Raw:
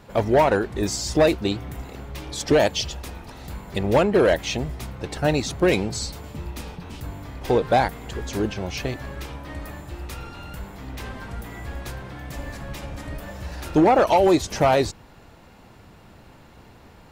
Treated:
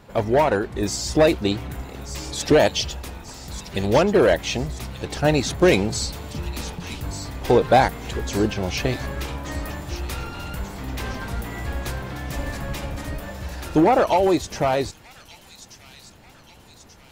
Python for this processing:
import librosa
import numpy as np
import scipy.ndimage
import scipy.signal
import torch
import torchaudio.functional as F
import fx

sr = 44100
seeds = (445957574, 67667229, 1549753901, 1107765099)

y = fx.rider(x, sr, range_db=5, speed_s=2.0)
y = fx.echo_wet_highpass(y, sr, ms=1184, feedback_pct=53, hz=3300.0, wet_db=-9)